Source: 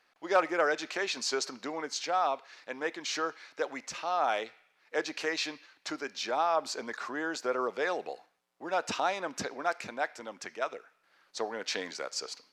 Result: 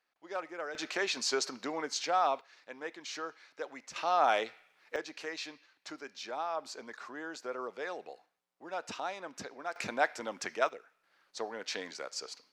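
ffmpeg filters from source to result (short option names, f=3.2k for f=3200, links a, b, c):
-af "asetnsamples=n=441:p=0,asendcmd='0.75 volume volume 0dB;2.41 volume volume -7.5dB;3.96 volume volume 2dB;4.96 volume volume -8dB;9.76 volume volume 3.5dB;10.69 volume volume -4dB',volume=-12.5dB"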